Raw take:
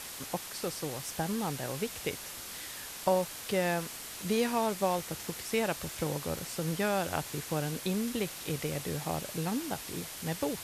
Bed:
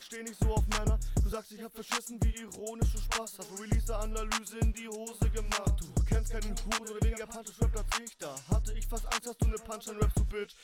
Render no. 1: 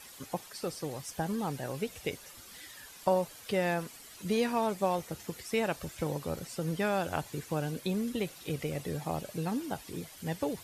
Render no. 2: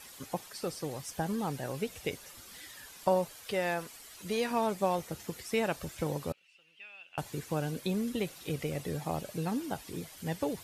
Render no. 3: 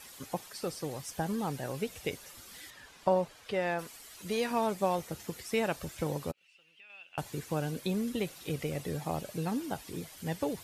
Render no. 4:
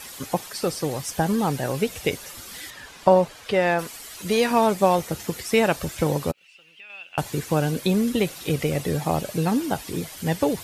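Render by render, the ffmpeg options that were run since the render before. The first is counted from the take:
-af "afftdn=nr=11:nf=-43"
-filter_complex "[0:a]asettb=1/sr,asplit=3[a][b][c];[a]atrim=end=3.314[d];[b]atrim=start=3.31:end=4.51,asetpts=PTS-STARTPTS,afade=t=in:d=0.004:c=qsin,afade=t=out:st=1.196:d=0.004:c=qsin,equalizer=f=180:t=o:w=1.9:g=-6.5[e];[c]atrim=start=4.506[f];[d][e]acrossfade=d=0.004:c1=hsin:c2=qsin[g];[g][f]acrossfade=d=0.004:c1=qsin:c2=hsin,asettb=1/sr,asplit=3[h][i][j];[h]atrim=end=6.324[k];[i]atrim=start=6.32:end=7.18,asetpts=PTS-STARTPTS,afade=t=in:d=0.004:c=qsin,afade=t=out:st=0.856:d=0.004:c=qsin,bandpass=f=2.7k:t=q:w=12[l];[j]atrim=start=7.176[m];[k][l]acrossfade=d=0.004:c1=hsin:c2=qsin[n];[n][m]acrossfade=d=0.004:c1=qsin:c2=hsin"
-filter_complex "[0:a]asettb=1/sr,asplit=3[a][b][c];[a]atrim=end=2.704[d];[b]atrim=start=2.7:end=3.79,asetpts=PTS-STARTPTS,afade=t=in:d=0.004:c=qsin,afade=t=out:st=1.086:d=0.004:c=qsin,aemphasis=mode=reproduction:type=50fm[e];[c]atrim=start=3.786[f];[d][e]acrossfade=d=0.004:c1=hsin:c2=qsin[g];[g][f]acrossfade=d=0.004:c1=qsin:c2=hsin,asettb=1/sr,asplit=3[h][i][j];[h]atrim=end=6.314[k];[i]atrim=start=6.31:end=6.9,asetpts=PTS-STARTPTS,afade=t=in:d=0.004:c=qsin,afade=t=out:st=0.586:d=0.004:c=qsin,acompressor=threshold=-53dB:ratio=3:attack=3.2:release=140:knee=1:detection=peak[l];[j]atrim=start=6.896[m];[k][l]acrossfade=d=0.004:c1=hsin:c2=qsin[n];[n][m]acrossfade=d=0.004:c1=qsin:c2=hsin"
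-af "volume=11dB"

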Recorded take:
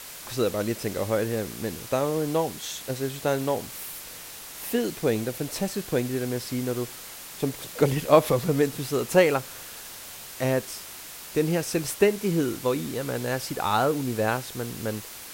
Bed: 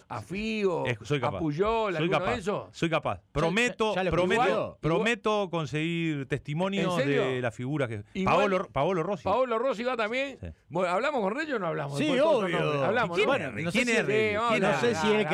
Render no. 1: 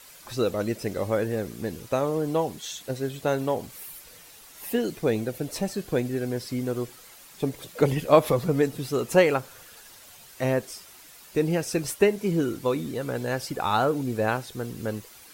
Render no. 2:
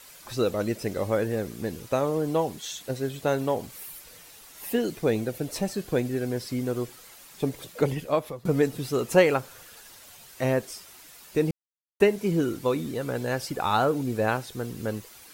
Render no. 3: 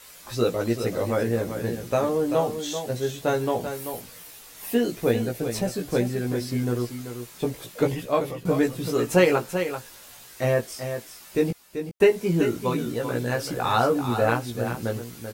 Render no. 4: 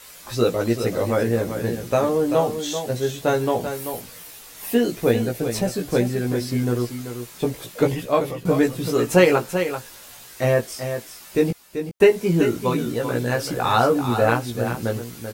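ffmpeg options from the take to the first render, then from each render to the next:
-af "afftdn=nr=10:nf=-41"
-filter_complex "[0:a]asplit=4[a][b][c][d];[a]atrim=end=8.45,asetpts=PTS-STARTPTS,afade=t=out:st=7.6:d=0.85:silence=0.0749894[e];[b]atrim=start=8.45:end=11.51,asetpts=PTS-STARTPTS,afade=t=in:d=0.004:c=hsin:silence=0.0749894,afade=t=out:st=3.056:d=0.004:c=hsin[f];[c]atrim=start=11.51:end=12,asetpts=PTS-STARTPTS,volume=0[g];[d]atrim=start=12,asetpts=PTS-STARTPTS,afade=t=in:d=0.004:c=hsin[h];[e][f][g][h]concat=n=4:v=0:a=1"
-filter_complex "[0:a]asplit=2[a][b];[b]adelay=17,volume=-2.5dB[c];[a][c]amix=inputs=2:normalize=0,aecho=1:1:387:0.376"
-af "volume=3.5dB"

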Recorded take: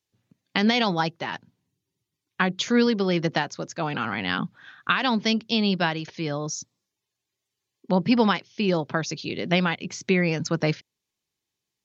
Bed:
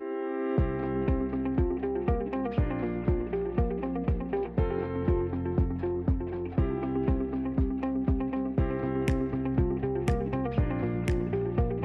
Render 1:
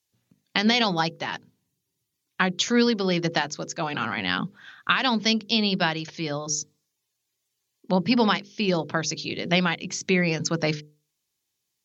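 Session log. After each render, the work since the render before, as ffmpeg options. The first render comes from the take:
-af "aemphasis=mode=production:type=cd,bandreject=f=50:t=h:w=6,bandreject=f=100:t=h:w=6,bandreject=f=150:t=h:w=6,bandreject=f=200:t=h:w=6,bandreject=f=250:t=h:w=6,bandreject=f=300:t=h:w=6,bandreject=f=350:t=h:w=6,bandreject=f=400:t=h:w=6,bandreject=f=450:t=h:w=6,bandreject=f=500:t=h:w=6"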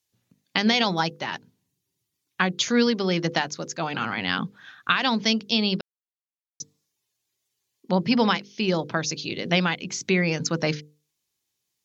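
-filter_complex "[0:a]asplit=3[a][b][c];[a]atrim=end=5.81,asetpts=PTS-STARTPTS,afade=t=out:st=5.806:d=0.004:c=hsin[d];[b]atrim=start=5.81:end=6.6,asetpts=PTS-STARTPTS,volume=0[e];[c]atrim=start=6.6,asetpts=PTS-STARTPTS,afade=t=in:d=0.004:c=hsin[f];[d][e][f]concat=n=3:v=0:a=1"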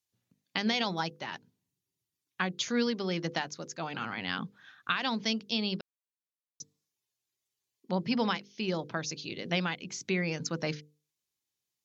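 -af "volume=-8.5dB"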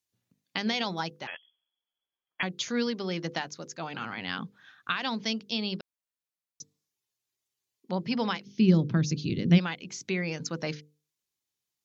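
-filter_complex "[0:a]asettb=1/sr,asplit=3[a][b][c];[a]atrim=end=1.274[d];[b]atrim=start=1.27:end=2.43,asetpts=PTS-STARTPTS,afade=t=in:d=0.004:c=qsin,afade=t=out:st=1.156:d=0.004:c=qsin,lowpass=f=3k:t=q:w=0.5098,lowpass=f=3k:t=q:w=0.6013,lowpass=f=3k:t=q:w=0.9,lowpass=f=3k:t=q:w=2.563,afreqshift=-3500[e];[c]atrim=start=2.426[f];[d][e]acrossfade=d=0.004:c1=hsin:c2=qsin[g];[g][f]acrossfade=d=0.004:c1=qsin:c2=hsin,asplit=3[h][i][j];[h]afade=t=out:st=8.45:d=0.02[k];[i]asubboost=boost=11:cutoff=220,afade=t=in:st=8.45:d=0.02,afade=t=out:st=9.57:d=0.02[l];[j]afade=t=in:st=9.57:d=0.02[m];[k][l][m]amix=inputs=3:normalize=0"

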